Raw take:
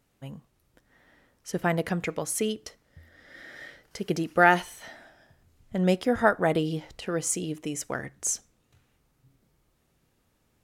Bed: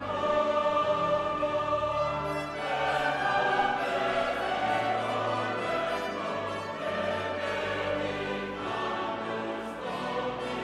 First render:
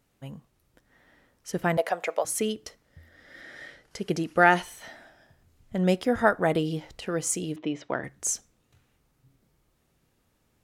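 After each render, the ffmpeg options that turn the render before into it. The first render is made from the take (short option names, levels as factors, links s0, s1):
-filter_complex "[0:a]asettb=1/sr,asplit=3[s0][s1][s2];[s0]atrim=end=1.774[s3];[s1]atrim=start=1.77:end=2.25,asetpts=PTS-STARTPTS,afade=t=in:d=0.004:c=qsin,afade=t=out:st=0.476:d=0.004:c=qsin,highpass=f=640:t=q:w=3.3[s4];[s2]atrim=start=2.246[s5];[s3][s4]acrossfade=d=0.004:c1=hsin:c2=qsin[s6];[s6][s5]acrossfade=d=0.004:c1=qsin:c2=hsin,asettb=1/sr,asplit=3[s7][s8][s9];[s7]atrim=end=3.414[s10];[s8]atrim=start=3.41:end=4.63,asetpts=PTS-STARTPTS,afade=t=in:d=0.004:c=qsin,afade=t=out:st=1.216:d=0.004:c=qsin,lowpass=f=12000:w=0.5412,lowpass=f=12000:w=1.3066[s11];[s9]atrim=start=4.626[s12];[s10][s11]acrossfade=d=0.004:c1=hsin:c2=qsin[s13];[s13][s12]acrossfade=d=0.004:c1=qsin:c2=hsin,asettb=1/sr,asplit=3[s14][s15][s16];[s14]atrim=end=7.564[s17];[s15]atrim=start=7.56:end=8.04,asetpts=PTS-STARTPTS,afade=t=in:d=0.004:c=qsin,afade=t=out:st=0.476:d=0.004:c=qsin,highpass=120,equalizer=f=320:t=q:w=4:g=5,equalizer=f=630:t=q:w=4:g=5,equalizer=f=950:t=q:w=4:g=5,equalizer=f=3600:t=q:w=4:g=5,lowpass=f=3900:w=0.5412,lowpass=f=3900:w=1.3066[s18];[s16]atrim=start=8.036[s19];[s17][s18]acrossfade=d=0.004:c1=hsin:c2=qsin[s20];[s20][s19]acrossfade=d=0.004:c1=qsin:c2=hsin"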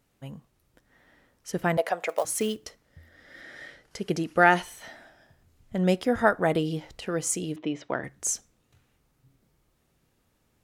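-filter_complex "[0:a]asettb=1/sr,asplit=3[s0][s1][s2];[s0]atrim=end=2.094[s3];[s1]atrim=start=2.09:end=2.65,asetpts=PTS-STARTPTS,afade=t=in:d=0.004:c=qsin,afade=t=out:st=0.556:d=0.004:c=qsin,acrusher=bits=5:mode=log:mix=0:aa=0.000001[s4];[s2]atrim=start=2.646[s5];[s3][s4]acrossfade=d=0.004:c1=hsin:c2=qsin[s6];[s6][s5]acrossfade=d=0.004:c1=qsin:c2=hsin"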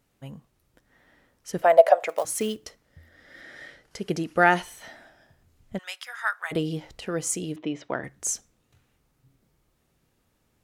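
-filter_complex "[0:a]asettb=1/sr,asplit=3[s0][s1][s2];[s0]atrim=end=1.624[s3];[s1]atrim=start=1.62:end=2.03,asetpts=PTS-STARTPTS,afade=t=in:d=0.004:c=qsin,afade=t=out:st=0.406:d=0.004:c=qsin,highpass=f=600:t=q:w=6.7[s4];[s2]atrim=start=2.026[s5];[s3][s4]acrossfade=d=0.004:c1=hsin:c2=qsin[s6];[s6][s5]acrossfade=d=0.004:c1=qsin:c2=hsin,asplit=3[s7][s8][s9];[s7]afade=t=out:st=5.77:d=0.02[s10];[s8]highpass=f=1200:w=0.5412,highpass=f=1200:w=1.3066,afade=t=in:st=5.77:d=0.02,afade=t=out:st=6.51:d=0.02[s11];[s9]afade=t=in:st=6.51:d=0.02[s12];[s10][s11][s12]amix=inputs=3:normalize=0"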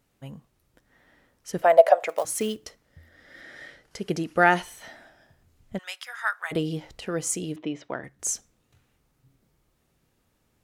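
-filter_complex "[0:a]asplit=2[s0][s1];[s0]atrim=end=8.19,asetpts=PTS-STARTPTS,afade=t=out:st=7.56:d=0.63:silence=0.501187[s2];[s1]atrim=start=8.19,asetpts=PTS-STARTPTS,afade=t=in:d=0.004:c=hsin:silence=0.501187[s3];[s2][s3]concat=n=2:v=0:a=1"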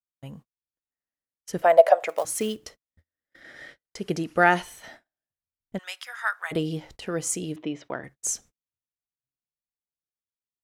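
-af "agate=range=0.01:threshold=0.00501:ratio=16:detection=peak"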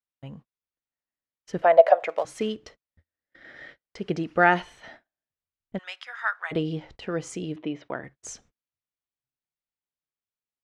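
-af "lowpass=3700"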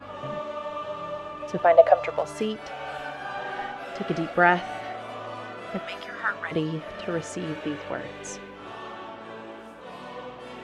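-filter_complex "[1:a]volume=0.447[s0];[0:a][s0]amix=inputs=2:normalize=0"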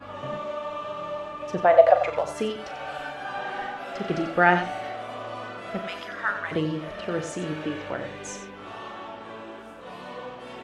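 -filter_complex "[0:a]asplit=2[s0][s1];[s1]adelay=39,volume=0.282[s2];[s0][s2]amix=inputs=2:normalize=0,asplit=2[s3][s4];[s4]aecho=0:1:91:0.316[s5];[s3][s5]amix=inputs=2:normalize=0"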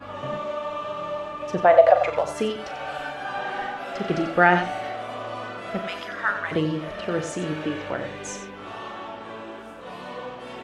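-af "volume=1.33,alimiter=limit=0.708:level=0:latency=1"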